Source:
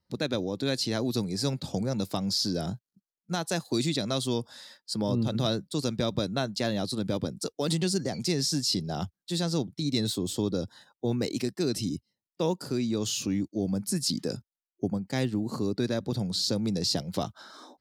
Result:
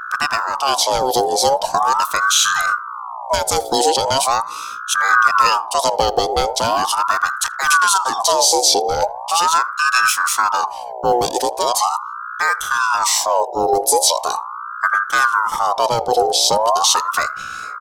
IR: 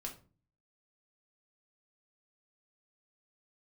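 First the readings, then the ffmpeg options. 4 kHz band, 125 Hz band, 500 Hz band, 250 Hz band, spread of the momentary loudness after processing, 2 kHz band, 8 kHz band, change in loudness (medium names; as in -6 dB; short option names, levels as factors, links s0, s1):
+12.0 dB, -6.5 dB, +12.0 dB, -5.0 dB, 8 LU, +24.5 dB, +17.5 dB, +13.5 dB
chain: -filter_complex "[0:a]bass=f=250:g=11,treble=f=4000:g=13,aecho=1:1:1.3:0.39,apsyclip=3.35,aeval=exprs='val(0)+0.0794*(sin(2*PI*60*n/s)+sin(2*PI*2*60*n/s)/2+sin(2*PI*3*60*n/s)/3+sin(2*PI*4*60*n/s)/4+sin(2*PI*5*60*n/s)/5)':c=same,asplit=2[s0][s1];[s1]adelay=80,lowpass=f=1200:p=1,volume=0.1,asplit=2[s2][s3];[s3]adelay=80,lowpass=f=1200:p=1,volume=0.38,asplit=2[s4][s5];[s5]adelay=80,lowpass=f=1200:p=1,volume=0.38[s6];[s2][s4][s6]amix=inputs=3:normalize=0[s7];[s0][s7]amix=inputs=2:normalize=0,aeval=exprs='val(0)*sin(2*PI*1000*n/s+1000*0.4/0.4*sin(2*PI*0.4*n/s))':c=same,volume=0.708"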